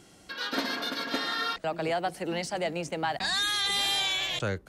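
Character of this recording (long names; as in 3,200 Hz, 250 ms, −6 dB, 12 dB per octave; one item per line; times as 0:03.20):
background noise floor −56 dBFS
spectral slope −2.5 dB per octave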